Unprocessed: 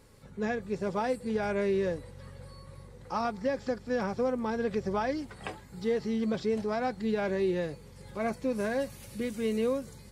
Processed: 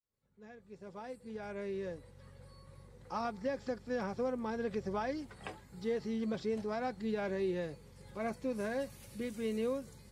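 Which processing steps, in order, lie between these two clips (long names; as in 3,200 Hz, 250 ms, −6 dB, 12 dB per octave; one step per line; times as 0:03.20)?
fade in at the beginning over 3.17 s
level −6 dB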